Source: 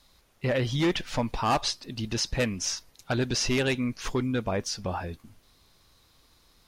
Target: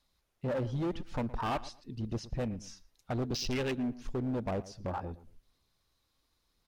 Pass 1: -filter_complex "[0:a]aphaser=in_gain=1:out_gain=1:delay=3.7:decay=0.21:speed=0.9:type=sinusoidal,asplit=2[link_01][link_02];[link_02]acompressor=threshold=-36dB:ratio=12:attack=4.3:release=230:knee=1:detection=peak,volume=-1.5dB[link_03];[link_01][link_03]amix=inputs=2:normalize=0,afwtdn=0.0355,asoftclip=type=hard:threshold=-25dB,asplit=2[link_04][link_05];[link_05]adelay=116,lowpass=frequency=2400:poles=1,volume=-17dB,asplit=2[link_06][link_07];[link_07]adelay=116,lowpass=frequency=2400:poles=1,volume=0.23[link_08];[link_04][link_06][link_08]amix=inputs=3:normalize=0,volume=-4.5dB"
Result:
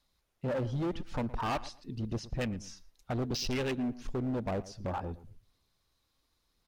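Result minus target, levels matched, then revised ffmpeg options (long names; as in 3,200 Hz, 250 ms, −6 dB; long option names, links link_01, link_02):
downward compressor: peak gain reduction −9.5 dB
-filter_complex "[0:a]aphaser=in_gain=1:out_gain=1:delay=3.7:decay=0.21:speed=0.9:type=sinusoidal,asplit=2[link_01][link_02];[link_02]acompressor=threshold=-46.5dB:ratio=12:attack=4.3:release=230:knee=1:detection=peak,volume=-1.5dB[link_03];[link_01][link_03]amix=inputs=2:normalize=0,afwtdn=0.0355,asoftclip=type=hard:threshold=-25dB,asplit=2[link_04][link_05];[link_05]adelay=116,lowpass=frequency=2400:poles=1,volume=-17dB,asplit=2[link_06][link_07];[link_07]adelay=116,lowpass=frequency=2400:poles=1,volume=0.23[link_08];[link_04][link_06][link_08]amix=inputs=3:normalize=0,volume=-4.5dB"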